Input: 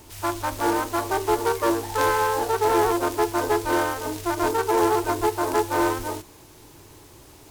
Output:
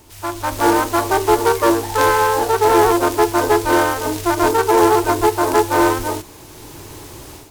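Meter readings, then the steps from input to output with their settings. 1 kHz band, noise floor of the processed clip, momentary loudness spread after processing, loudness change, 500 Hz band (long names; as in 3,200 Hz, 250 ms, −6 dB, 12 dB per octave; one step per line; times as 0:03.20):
+7.5 dB, −40 dBFS, 13 LU, +7.5 dB, +7.5 dB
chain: automatic gain control gain up to 12.5 dB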